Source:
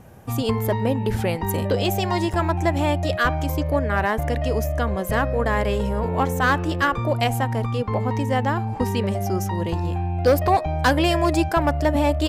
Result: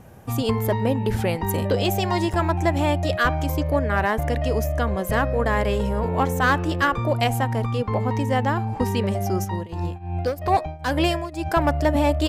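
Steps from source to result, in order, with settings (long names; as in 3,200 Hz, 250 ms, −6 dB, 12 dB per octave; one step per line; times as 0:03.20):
0:09.44–0:11.45: shaped tremolo triangle 3.8 Hz → 1.6 Hz, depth 90%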